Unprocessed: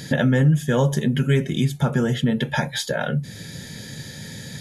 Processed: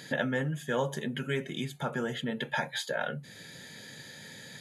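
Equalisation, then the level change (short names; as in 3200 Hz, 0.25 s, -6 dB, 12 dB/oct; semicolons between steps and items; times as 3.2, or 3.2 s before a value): HPF 670 Hz 6 dB/oct; high shelf 4100 Hz -8 dB; notch 5500 Hz, Q 6.8; -4.0 dB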